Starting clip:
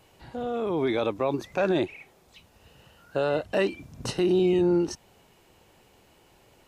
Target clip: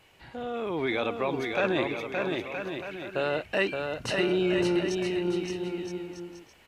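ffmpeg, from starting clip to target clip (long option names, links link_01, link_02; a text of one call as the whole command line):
ffmpeg -i in.wav -af "equalizer=frequency=2200:width_type=o:width=1.5:gain=9.5,aecho=1:1:570|969|1248|1444|1581:0.631|0.398|0.251|0.158|0.1,volume=-4.5dB" out.wav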